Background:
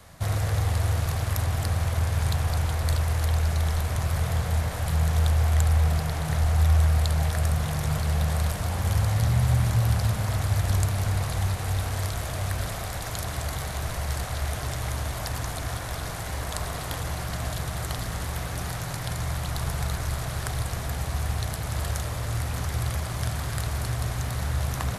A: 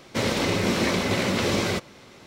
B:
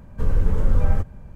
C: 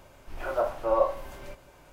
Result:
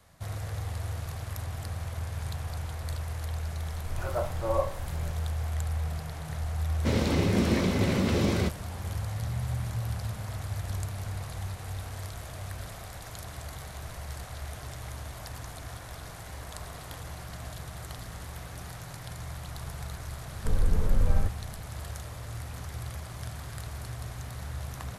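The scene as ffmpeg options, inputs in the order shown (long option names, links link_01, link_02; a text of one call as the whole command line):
ffmpeg -i bed.wav -i cue0.wav -i cue1.wav -i cue2.wav -filter_complex "[0:a]volume=-10dB[link_01];[3:a]bass=frequency=250:gain=8,treble=frequency=4000:gain=5[link_02];[1:a]lowshelf=frequency=370:gain=11.5[link_03];[link_02]atrim=end=1.92,asetpts=PTS-STARTPTS,volume=-5dB,afade=type=in:duration=0.004:curve=hsin,afade=type=out:start_time=1.916:duration=0.004:curve=hsin,adelay=3580[link_04];[link_03]atrim=end=2.26,asetpts=PTS-STARTPTS,volume=-8.5dB,afade=type=in:duration=0.004:curve=hsin,afade=type=out:start_time=2.256:duration=0.004:curve=hsin,adelay=6700[link_05];[2:a]atrim=end=1.35,asetpts=PTS-STARTPTS,volume=-5.5dB,afade=type=in:duration=0.004:curve=hsin,afade=type=out:start_time=1.346:duration=0.004:curve=hsin,adelay=20260[link_06];[link_01][link_04][link_05][link_06]amix=inputs=4:normalize=0" out.wav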